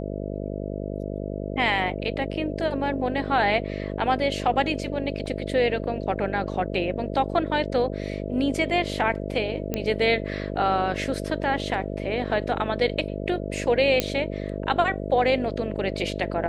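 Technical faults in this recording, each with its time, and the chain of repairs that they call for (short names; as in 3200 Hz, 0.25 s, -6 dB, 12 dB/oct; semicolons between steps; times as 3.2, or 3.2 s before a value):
buzz 50 Hz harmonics 13 -31 dBFS
5.26 gap 2.7 ms
9.74 pop -12 dBFS
14 pop -6 dBFS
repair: de-click; de-hum 50 Hz, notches 13; interpolate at 5.26, 2.7 ms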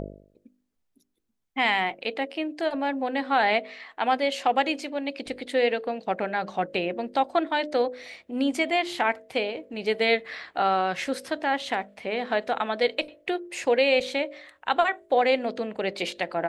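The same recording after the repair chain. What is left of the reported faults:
none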